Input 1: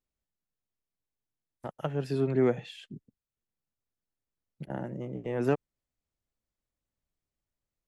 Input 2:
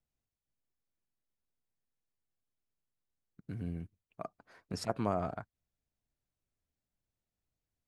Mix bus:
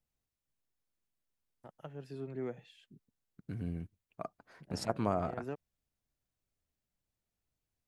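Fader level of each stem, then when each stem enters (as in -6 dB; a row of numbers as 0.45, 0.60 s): -14.5, +0.5 dB; 0.00, 0.00 s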